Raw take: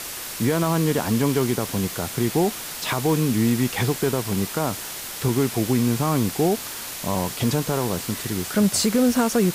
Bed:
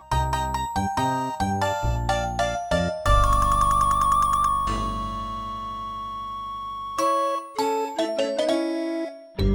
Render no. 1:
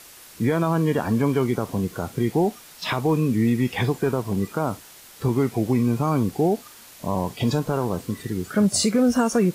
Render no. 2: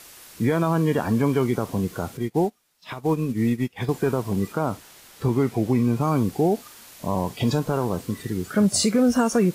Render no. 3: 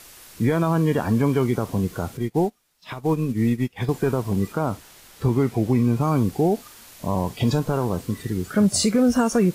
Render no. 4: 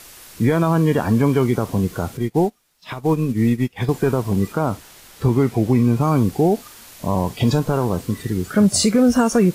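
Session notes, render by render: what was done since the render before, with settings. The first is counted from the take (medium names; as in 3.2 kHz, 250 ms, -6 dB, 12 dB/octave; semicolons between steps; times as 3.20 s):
noise print and reduce 13 dB
2.17–3.89 s: upward expansion 2.5:1, over -33 dBFS; 4.52–6.01 s: treble shelf 5.3 kHz -4 dB
bass shelf 72 Hz +10 dB
trim +3.5 dB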